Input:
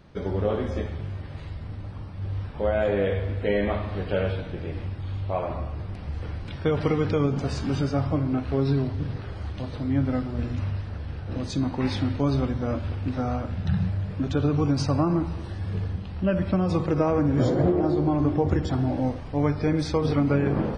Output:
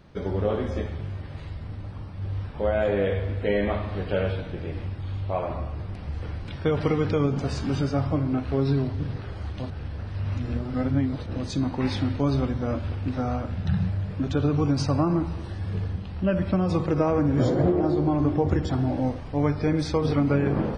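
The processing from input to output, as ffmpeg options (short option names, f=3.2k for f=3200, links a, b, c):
-filter_complex "[0:a]asplit=3[a][b][c];[a]atrim=end=9.702[d];[b]atrim=start=9.698:end=11.262,asetpts=PTS-STARTPTS,areverse[e];[c]atrim=start=11.258[f];[d][e]acrossfade=d=0.004:c1=hsin:c2=hsin[g];[g][f]acrossfade=d=0.004:c1=hsin:c2=hsin"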